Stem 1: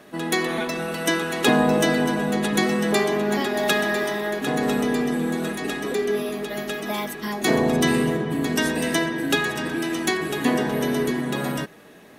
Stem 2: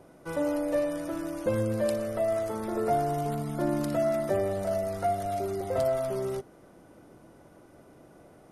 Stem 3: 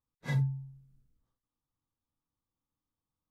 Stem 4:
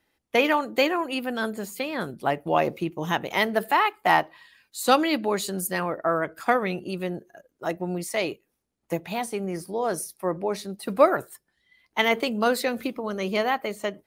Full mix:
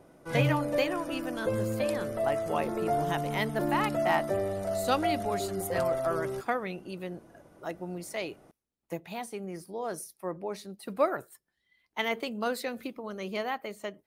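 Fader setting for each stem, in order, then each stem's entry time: mute, -2.5 dB, +1.0 dB, -8.5 dB; mute, 0.00 s, 0.05 s, 0.00 s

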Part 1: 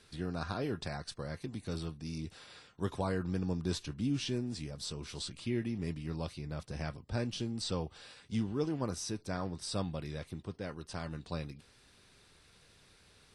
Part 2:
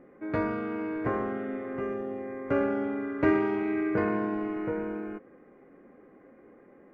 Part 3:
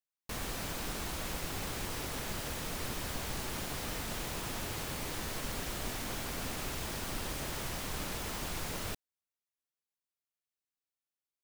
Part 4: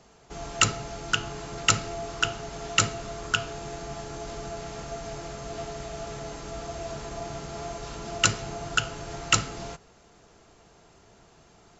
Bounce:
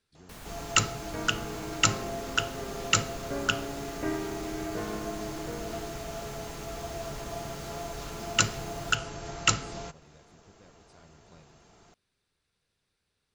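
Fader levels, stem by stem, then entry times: -17.5 dB, -9.0 dB, -8.0 dB, -2.0 dB; 0.00 s, 0.80 s, 0.00 s, 0.15 s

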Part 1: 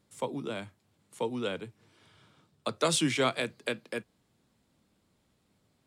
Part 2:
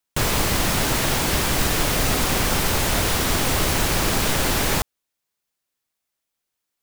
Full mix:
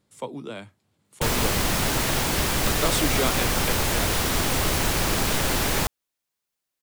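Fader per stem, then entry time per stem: +0.5 dB, -2.5 dB; 0.00 s, 1.05 s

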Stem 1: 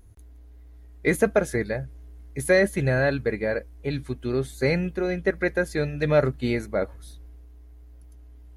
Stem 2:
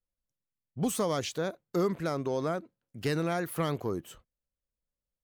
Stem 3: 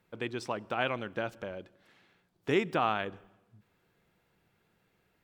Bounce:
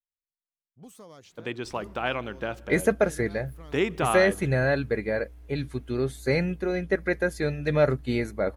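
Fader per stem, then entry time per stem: -1.5 dB, -18.5 dB, +2.5 dB; 1.65 s, 0.00 s, 1.25 s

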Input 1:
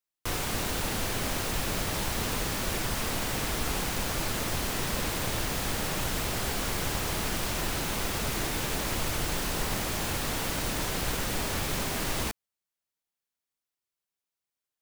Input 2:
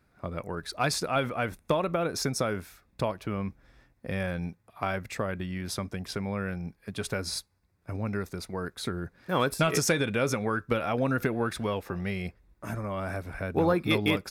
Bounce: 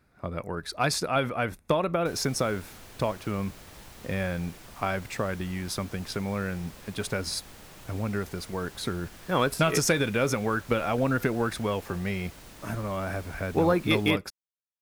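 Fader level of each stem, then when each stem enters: -17.5 dB, +1.5 dB; 1.80 s, 0.00 s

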